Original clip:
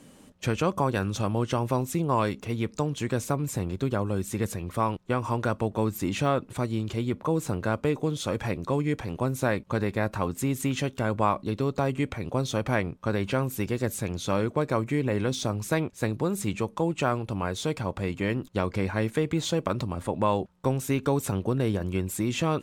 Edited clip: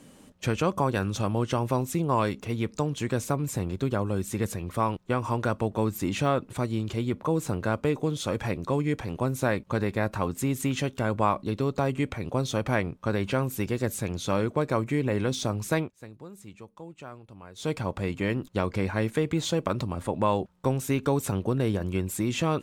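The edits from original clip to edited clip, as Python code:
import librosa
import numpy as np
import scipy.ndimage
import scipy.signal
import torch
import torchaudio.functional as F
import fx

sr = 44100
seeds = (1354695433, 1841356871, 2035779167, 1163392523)

y = fx.edit(x, sr, fx.fade_down_up(start_s=15.79, length_s=1.9, db=-17.0, fade_s=0.14), tone=tone)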